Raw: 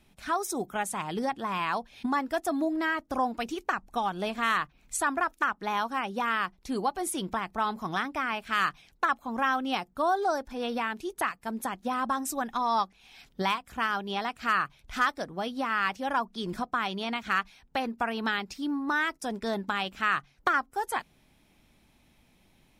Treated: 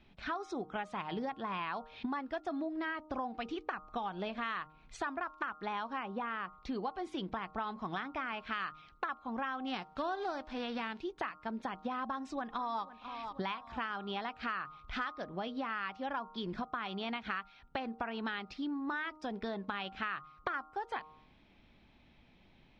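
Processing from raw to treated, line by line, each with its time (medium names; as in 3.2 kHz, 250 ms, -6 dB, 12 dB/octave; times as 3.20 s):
6.03–6.58 s: low-pass 1.7 kHz 6 dB/octave
9.66–10.99 s: formants flattened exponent 0.6
12.03–12.83 s: echo throw 490 ms, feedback 45%, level -16.5 dB
whole clip: low-pass 4.2 kHz 24 dB/octave; de-hum 154.5 Hz, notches 9; compression 4:1, threshold -36 dBFS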